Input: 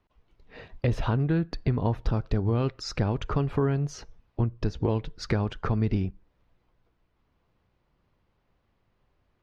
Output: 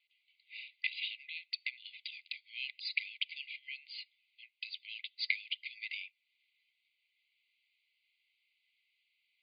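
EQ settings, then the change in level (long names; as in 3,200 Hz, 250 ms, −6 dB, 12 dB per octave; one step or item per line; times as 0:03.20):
linear-phase brick-wall high-pass 2,000 Hz
linear-phase brick-wall low-pass 4,900 Hz
high-frequency loss of the air 130 metres
+10.0 dB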